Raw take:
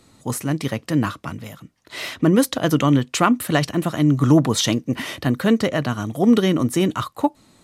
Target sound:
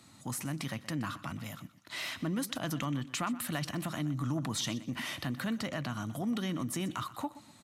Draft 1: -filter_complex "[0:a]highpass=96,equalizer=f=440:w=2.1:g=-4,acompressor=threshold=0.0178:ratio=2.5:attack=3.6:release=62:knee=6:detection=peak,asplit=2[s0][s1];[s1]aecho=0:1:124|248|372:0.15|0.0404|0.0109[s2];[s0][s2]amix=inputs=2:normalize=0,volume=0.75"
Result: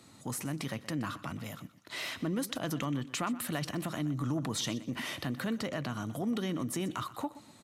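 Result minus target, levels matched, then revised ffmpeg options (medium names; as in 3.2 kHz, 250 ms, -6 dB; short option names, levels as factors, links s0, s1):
500 Hz band +3.0 dB
-filter_complex "[0:a]highpass=96,equalizer=f=440:w=2.1:g=-12.5,acompressor=threshold=0.0178:ratio=2.5:attack=3.6:release=62:knee=6:detection=peak,asplit=2[s0][s1];[s1]aecho=0:1:124|248|372:0.15|0.0404|0.0109[s2];[s0][s2]amix=inputs=2:normalize=0,volume=0.75"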